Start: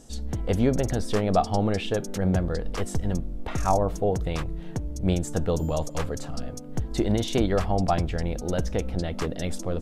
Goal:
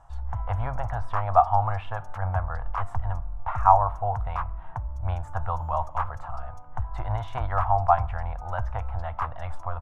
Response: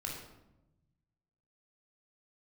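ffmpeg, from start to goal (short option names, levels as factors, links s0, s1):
-filter_complex "[0:a]firequalizer=gain_entry='entry(110,0);entry(200,-27);entry(280,-23);entry(410,-25);entry(690,4);entry(970,14);entry(1900,-4);entry(4200,-22);entry(6800,-24);entry(12000,-22)':delay=0.05:min_phase=1,asplit=2[s0][s1];[1:a]atrim=start_sample=2205[s2];[s1][s2]afir=irnorm=-1:irlink=0,volume=0.1[s3];[s0][s3]amix=inputs=2:normalize=0,volume=0.891"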